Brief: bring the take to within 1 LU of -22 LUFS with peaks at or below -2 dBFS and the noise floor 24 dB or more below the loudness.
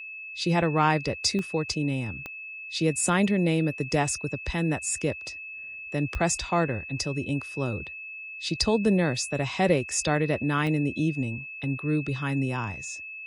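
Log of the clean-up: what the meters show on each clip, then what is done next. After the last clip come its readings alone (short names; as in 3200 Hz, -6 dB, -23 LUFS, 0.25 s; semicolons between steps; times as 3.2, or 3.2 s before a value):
clicks 4; steady tone 2600 Hz; tone level -37 dBFS; loudness -27.0 LUFS; peak -10.5 dBFS; loudness target -22.0 LUFS
-> de-click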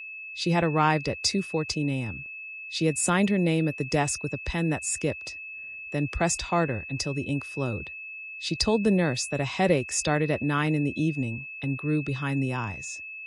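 clicks 0; steady tone 2600 Hz; tone level -37 dBFS
-> notch 2600 Hz, Q 30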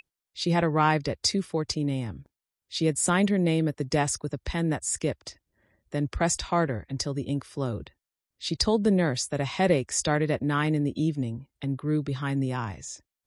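steady tone none; loudness -27.0 LUFS; peak -10.5 dBFS; loudness target -22.0 LUFS
-> gain +5 dB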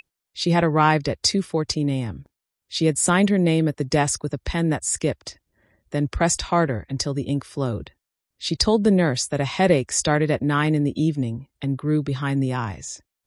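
loudness -22.0 LUFS; peak -5.5 dBFS; noise floor -85 dBFS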